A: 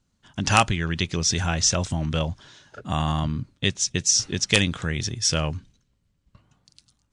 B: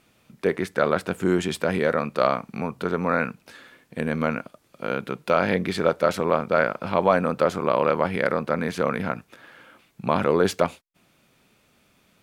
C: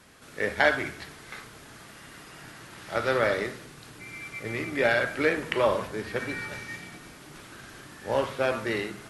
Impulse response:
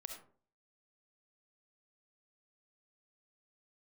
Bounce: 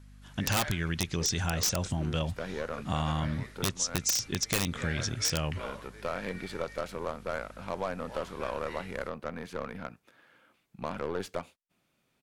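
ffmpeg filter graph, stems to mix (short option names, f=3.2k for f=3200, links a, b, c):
-filter_complex "[0:a]volume=-2.5dB,asplit=2[a][b];[1:a]aeval=exprs='0.531*(cos(1*acos(clip(val(0)/0.531,-1,1)))-cos(1*PI/2))+0.0376*(cos(8*acos(clip(val(0)/0.531,-1,1)))-cos(8*PI/2))':c=same,adelay=750,volume=-13dB[c];[2:a]equalizer=f=180:w=0.32:g=-15,aeval=exprs='val(0)+0.01*(sin(2*PI*50*n/s)+sin(2*PI*2*50*n/s)/2+sin(2*PI*3*50*n/s)/3+sin(2*PI*4*50*n/s)/4+sin(2*PI*5*50*n/s)/5)':c=same,volume=-11dB[d];[b]apad=whole_len=572093[e];[c][e]sidechaincompress=threshold=-29dB:ratio=8:attack=9.2:release=274[f];[a][f][d]amix=inputs=3:normalize=0,aeval=exprs='(mod(4.73*val(0)+1,2)-1)/4.73':c=same,acompressor=threshold=-29dB:ratio=2"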